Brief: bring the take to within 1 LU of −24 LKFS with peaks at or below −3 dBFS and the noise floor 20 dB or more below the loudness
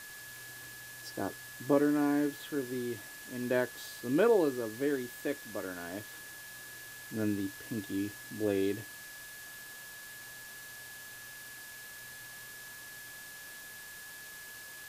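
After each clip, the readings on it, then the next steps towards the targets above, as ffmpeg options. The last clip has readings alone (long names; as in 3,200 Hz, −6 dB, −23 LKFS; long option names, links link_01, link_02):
interfering tone 1,700 Hz; level of the tone −48 dBFS; background noise floor −48 dBFS; target noise floor −56 dBFS; integrated loudness −36.0 LKFS; sample peak −14.0 dBFS; target loudness −24.0 LKFS
→ -af "bandreject=frequency=1700:width=30"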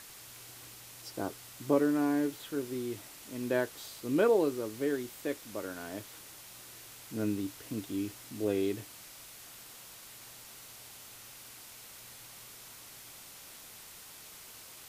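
interfering tone none found; background noise floor −51 dBFS; target noise floor −54 dBFS
→ -af "afftdn=noise_reduction=6:noise_floor=-51"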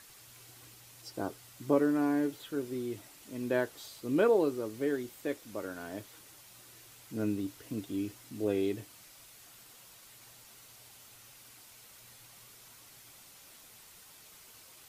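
background noise floor −56 dBFS; integrated loudness −33.5 LKFS; sample peak −14.0 dBFS; target loudness −24.0 LKFS
→ -af "volume=9.5dB"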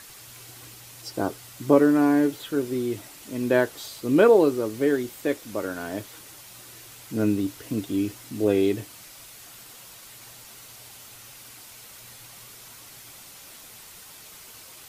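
integrated loudness −24.0 LKFS; sample peak −4.5 dBFS; background noise floor −46 dBFS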